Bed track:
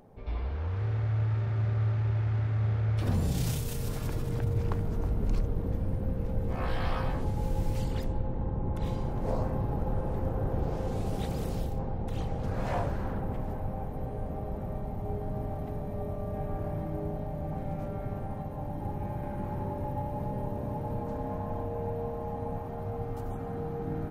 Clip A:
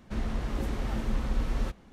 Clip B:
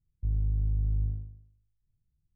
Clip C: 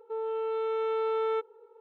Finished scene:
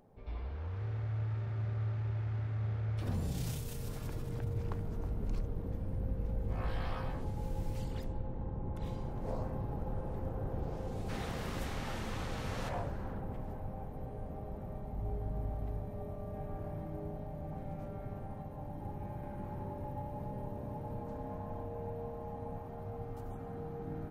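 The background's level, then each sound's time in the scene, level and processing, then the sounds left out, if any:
bed track -7.5 dB
5.73 add B -11 dB
10.98 add A + HPF 890 Hz 6 dB/oct
14.7 add B -12 dB
not used: C

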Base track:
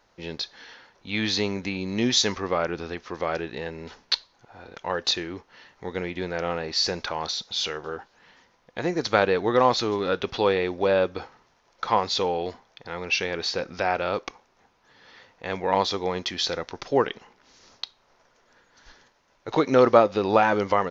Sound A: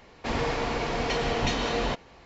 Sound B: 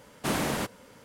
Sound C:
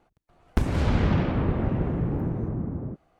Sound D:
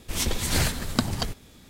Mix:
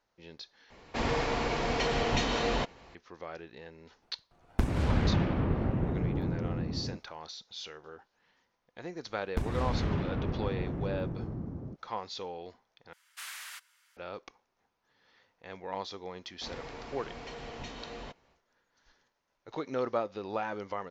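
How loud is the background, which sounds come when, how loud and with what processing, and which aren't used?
base track -15 dB
0.7 replace with A -2 dB
4.02 add C -4.5 dB
8.8 add C -8.5 dB
12.93 replace with B -8.5 dB + HPF 1400 Hz 24 dB/oct
16.17 add A -16 dB, fades 0.10 s
not used: D

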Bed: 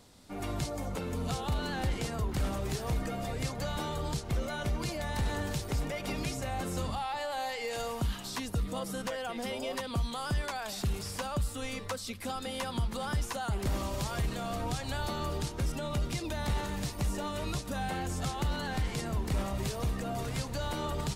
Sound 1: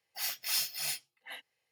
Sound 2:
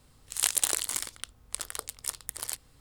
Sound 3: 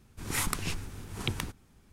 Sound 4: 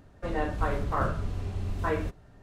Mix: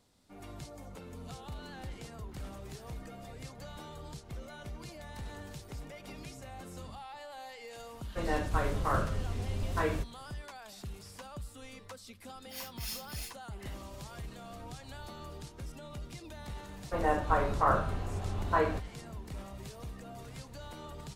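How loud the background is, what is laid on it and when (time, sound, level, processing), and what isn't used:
bed -11.5 dB
7.93 add 4 -2.5 dB + high shelf 4000 Hz +9 dB
12.34 add 1 -9.5 dB
16.69 add 4 -4 dB + bell 880 Hz +8.5 dB 1.9 oct
not used: 2, 3

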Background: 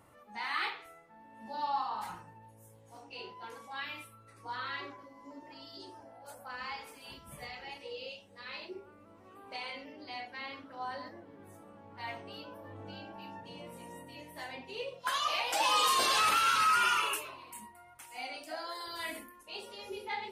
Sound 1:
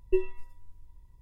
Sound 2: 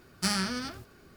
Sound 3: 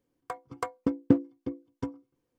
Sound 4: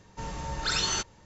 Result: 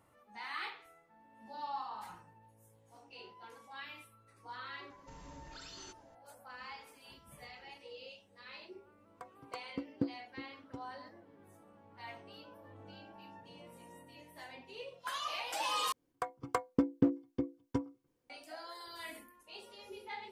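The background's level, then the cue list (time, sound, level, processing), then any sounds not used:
background -7 dB
4.9 add 4 -12.5 dB + compressor, threshold -36 dBFS
8.91 add 3 -13 dB
15.92 replace with 3 -0.5 dB + limiter -14.5 dBFS
not used: 1, 2

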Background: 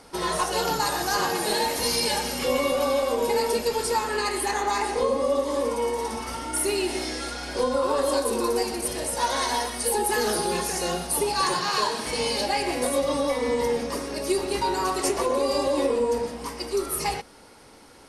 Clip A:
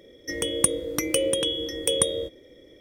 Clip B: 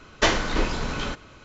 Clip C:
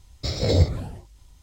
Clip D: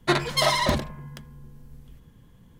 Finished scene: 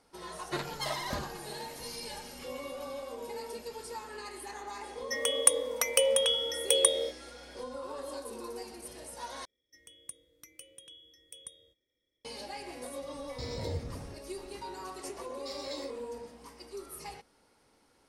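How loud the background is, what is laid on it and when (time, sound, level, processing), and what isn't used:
background -17 dB
0.44 add D -14 dB
4.83 add A -1 dB + brick-wall FIR high-pass 450 Hz
9.45 replace with A -17.5 dB + passive tone stack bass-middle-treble 5-5-5
13.15 add C -7 dB + compressor 2:1, threshold -34 dBFS
15.22 add C -12 dB + HPF 1300 Hz
not used: B

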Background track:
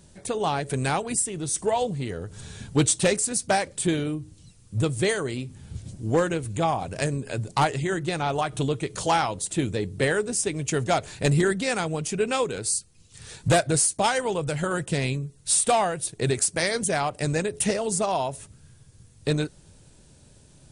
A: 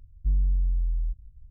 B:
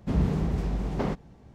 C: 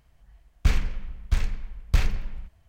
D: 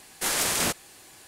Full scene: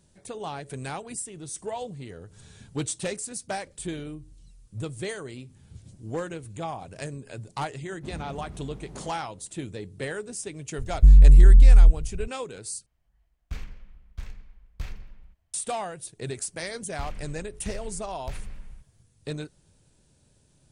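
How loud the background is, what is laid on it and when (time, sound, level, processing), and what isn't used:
background track -9.5 dB
3.54 add A -15.5 dB + compressor, threshold -35 dBFS
7.96 add B -14 dB
10.78 add A -5.5 dB + maximiser +21.5 dB
12.86 replace with C -14 dB
16.34 add C -8 dB + compressor 3:1, threshold -23 dBFS
not used: D

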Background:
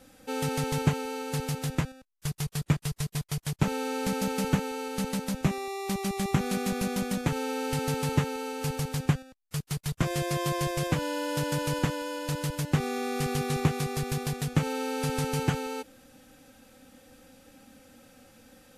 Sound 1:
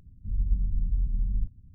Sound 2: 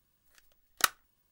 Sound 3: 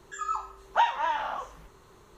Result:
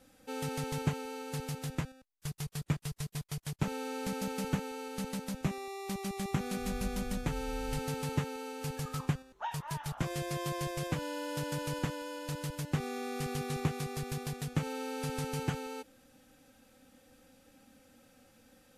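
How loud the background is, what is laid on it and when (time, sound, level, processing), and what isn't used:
background -7 dB
6.34 add 1 -14.5 dB
8.65 add 3 -15.5 dB
not used: 2

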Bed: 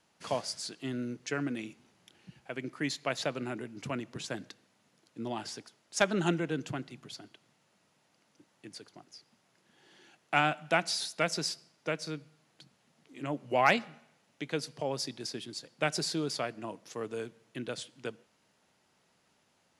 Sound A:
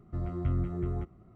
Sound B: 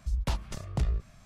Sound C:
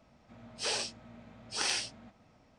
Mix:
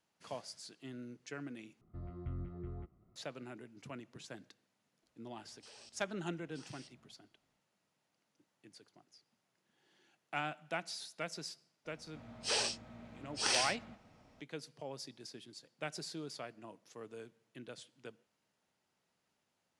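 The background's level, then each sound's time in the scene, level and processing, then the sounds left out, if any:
bed -11.5 dB
1.81 replace with A -12.5 dB + downsampling 11025 Hz
5.02 add C -15 dB + level quantiser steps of 14 dB
11.85 add C -0.5 dB
not used: B

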